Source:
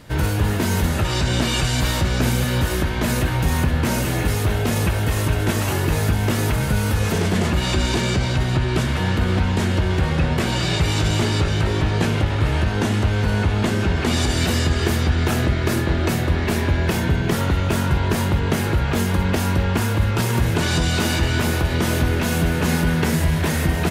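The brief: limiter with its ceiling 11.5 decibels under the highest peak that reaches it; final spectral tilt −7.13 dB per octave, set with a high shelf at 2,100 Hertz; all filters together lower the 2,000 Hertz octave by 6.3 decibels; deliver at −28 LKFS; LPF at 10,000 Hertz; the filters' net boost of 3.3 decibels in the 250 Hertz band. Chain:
low-pass filter 10,000 Hz
parametric band 250 Hz +4.5 dB
parametric band 2,000 Hz −3.5 dB
high-shelf EQ 2,100 Hz −9 dB
level −3 dB
brickwall limiter −20 dBFS

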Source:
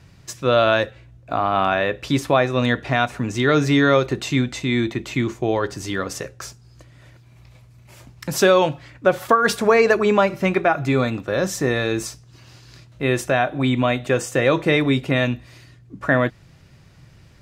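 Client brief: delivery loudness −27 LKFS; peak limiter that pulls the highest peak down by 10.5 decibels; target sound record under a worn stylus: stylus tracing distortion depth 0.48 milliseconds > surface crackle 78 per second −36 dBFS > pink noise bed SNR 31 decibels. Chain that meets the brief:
brickwall limiter −14.5 dBFS
stylus tracing distortion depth 0.48 ms
surface crackle 78 per second −36 dBFS
pink noise bed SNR 31 dB
level −1.5 dB

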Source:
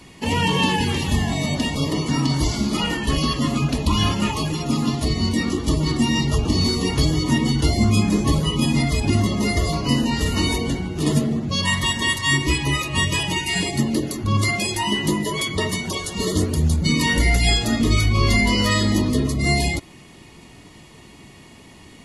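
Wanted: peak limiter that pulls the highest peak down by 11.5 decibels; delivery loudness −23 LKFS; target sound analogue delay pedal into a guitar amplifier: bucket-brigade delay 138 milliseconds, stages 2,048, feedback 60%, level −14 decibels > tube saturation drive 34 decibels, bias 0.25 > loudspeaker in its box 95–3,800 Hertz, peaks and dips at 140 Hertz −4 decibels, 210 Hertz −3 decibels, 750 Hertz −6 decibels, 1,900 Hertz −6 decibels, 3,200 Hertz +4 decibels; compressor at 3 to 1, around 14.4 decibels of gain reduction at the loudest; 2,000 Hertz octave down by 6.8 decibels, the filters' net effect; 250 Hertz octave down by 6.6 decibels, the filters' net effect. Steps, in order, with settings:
parametric band 250 Hz −6 dB
parametric band 2,000 Hz −5 dB
downward compressor 3 to 1, threshold −35 dBFS
brickwall limiter −31 dBFS
bucket-brigade delay 138 ms, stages 2,048, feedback 60%, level −14 dB
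tube saturation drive 34 dB, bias 0.25
loudspeaker in its box 95–3,800 Hz, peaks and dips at 140 Hz −4 dB, 210 Hz −3 dB, 750 Hz −6 dB, 1,900 Hz −6 dB, 3,200 Hz +4 dB
level +21 dB

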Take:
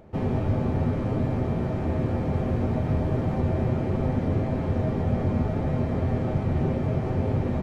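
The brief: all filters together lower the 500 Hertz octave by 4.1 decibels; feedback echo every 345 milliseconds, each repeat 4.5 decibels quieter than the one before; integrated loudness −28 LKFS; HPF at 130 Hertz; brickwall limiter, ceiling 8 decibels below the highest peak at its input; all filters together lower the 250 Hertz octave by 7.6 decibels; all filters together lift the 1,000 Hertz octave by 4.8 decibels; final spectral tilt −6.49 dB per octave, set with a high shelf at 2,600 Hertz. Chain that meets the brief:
high-pass filter 130 Hz
parametric band 250 Hz −8.5 dB
parametric band 500 Hz −6 dB
parametric band 1,000 Hz +8.5 dB
high-shelf EQ 2,600 Hz +6.5 dB
brickwall limiter −25.5 dBFS
repeating echo 345 ms, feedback 60%, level −4.5 dB
level +4.5 dB

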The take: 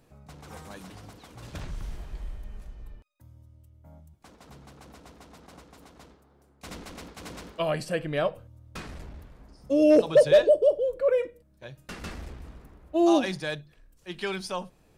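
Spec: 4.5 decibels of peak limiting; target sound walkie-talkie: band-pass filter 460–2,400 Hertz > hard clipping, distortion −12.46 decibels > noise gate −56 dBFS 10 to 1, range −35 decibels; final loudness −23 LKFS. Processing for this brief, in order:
brickwall limiter −15 dBFS
band-pass filter 460–2,400 Hz
hard clipping −22 dBFS
noise gate −56 dBFS 10 to 1, range −35 dB
level +7.5 dB

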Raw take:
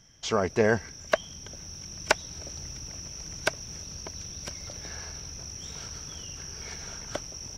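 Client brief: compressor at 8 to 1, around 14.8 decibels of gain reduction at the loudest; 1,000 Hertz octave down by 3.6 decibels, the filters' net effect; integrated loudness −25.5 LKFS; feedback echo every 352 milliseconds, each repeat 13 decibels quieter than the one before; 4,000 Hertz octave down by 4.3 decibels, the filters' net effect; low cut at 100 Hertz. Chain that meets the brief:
high-pass filter 100 Hz
parametric band 1,000 Hz −4.5 dB
parametric band 4,000 Hz −7 dB
downward compressor 8 to 1, threshold −35 dBFS
repeating echo 352 ms, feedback 22%, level −13 dB
level +15.5 dB

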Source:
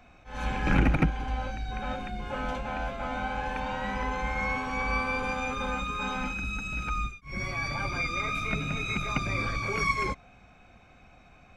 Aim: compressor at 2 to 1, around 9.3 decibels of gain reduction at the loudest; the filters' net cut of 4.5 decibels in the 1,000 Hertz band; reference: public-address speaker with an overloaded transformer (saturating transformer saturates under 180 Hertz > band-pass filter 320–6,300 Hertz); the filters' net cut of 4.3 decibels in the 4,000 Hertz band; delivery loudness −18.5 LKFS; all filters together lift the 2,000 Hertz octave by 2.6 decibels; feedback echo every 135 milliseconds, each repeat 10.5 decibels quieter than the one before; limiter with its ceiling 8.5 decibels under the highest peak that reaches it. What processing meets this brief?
parametric band 1,000 Hz −7.5 dB
parametric band 2,000 Hz +7 dB
parametric band 4,000 Hz −6.5 dB
downward compressor 2 to 1, threshold −35 dBFS
brickwall limiter −27.5 dBFS
repeating echo 135 ms, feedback 30%, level −10.5 dB
saturating transformer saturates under 180 Hz
band-pass filter 320–6,300 Hz
level +20.5 dB

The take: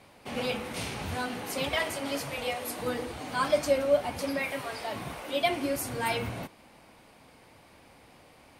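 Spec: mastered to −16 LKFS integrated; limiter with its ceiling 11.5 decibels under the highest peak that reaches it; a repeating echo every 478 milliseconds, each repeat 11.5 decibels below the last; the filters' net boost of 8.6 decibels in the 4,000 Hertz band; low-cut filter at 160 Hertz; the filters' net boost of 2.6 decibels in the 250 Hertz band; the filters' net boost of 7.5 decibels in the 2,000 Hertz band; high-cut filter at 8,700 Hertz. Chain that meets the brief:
high-pass filter 160 Hz
low-pass filter 8,700 Hz
parametric band 250 Hz +3.5 dB
parametric band 2,000 Hz +6.5 dB
parametric band 4,000 Hz +9 dB
brickwall limiter −19 dBFS
repeating echo 478 ms, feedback 27%, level −11.5 dB
level +13 dB

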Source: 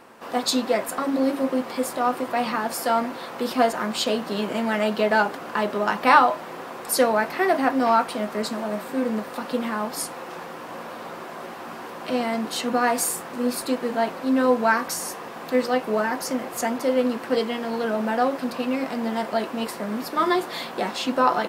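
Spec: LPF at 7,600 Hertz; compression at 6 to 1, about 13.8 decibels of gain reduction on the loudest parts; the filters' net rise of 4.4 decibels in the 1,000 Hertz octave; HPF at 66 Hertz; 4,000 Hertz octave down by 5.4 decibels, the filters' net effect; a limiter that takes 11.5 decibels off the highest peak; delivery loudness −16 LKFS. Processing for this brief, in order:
high-pass filter 66 Hz
low-pass filter 7,600 Hz
parametric band 1,000 Hz +6 dB
parametric band 4,000 Hz −7 dB
downward compressor 6 to 1, threshold −21 dBFS
level +14.5 dB
brickwall limiter −6.5 dBFS

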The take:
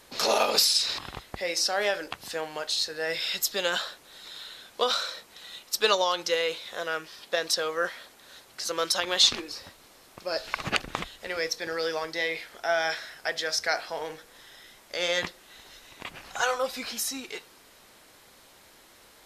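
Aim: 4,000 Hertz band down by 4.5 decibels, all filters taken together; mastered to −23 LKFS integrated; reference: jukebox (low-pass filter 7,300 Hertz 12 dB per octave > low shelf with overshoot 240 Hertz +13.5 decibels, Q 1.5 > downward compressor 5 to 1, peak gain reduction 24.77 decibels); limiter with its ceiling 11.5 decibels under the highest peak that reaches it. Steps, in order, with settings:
parametric band 4,000 Hz −5 dB
brickwall limiter −19 dBFS
low-pass filter 7,300 Hz 12 dB per octave
low shelf with overshoot 240 Hz +13.5 dB, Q 1.5
downward compressor 5 to 1, threshold −44 dBFS
level +23.5 dB

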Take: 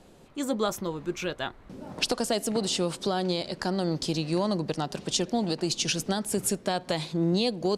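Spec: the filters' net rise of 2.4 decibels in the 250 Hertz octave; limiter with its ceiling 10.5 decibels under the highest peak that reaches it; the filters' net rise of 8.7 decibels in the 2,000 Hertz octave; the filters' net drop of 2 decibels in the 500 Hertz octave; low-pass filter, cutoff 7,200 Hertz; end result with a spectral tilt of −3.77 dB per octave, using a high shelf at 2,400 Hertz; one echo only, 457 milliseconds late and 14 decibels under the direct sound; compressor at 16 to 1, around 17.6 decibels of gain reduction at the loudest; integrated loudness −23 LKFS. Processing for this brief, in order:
low-pass filter 7,200 Hz
parametric band 250 Hz +5 dB
parametric band 500 Hz −5.5 dB
parametric band 2,000 Hz +8 dB
high-shelf EQ 2,400 Hz +7.5 dB
downward compressor 16 to 1, threshold −34 dBFS
brickwall limiter −28.5 dBFS
single-tap delay 457 ms −14 dB
level +16.5 dB

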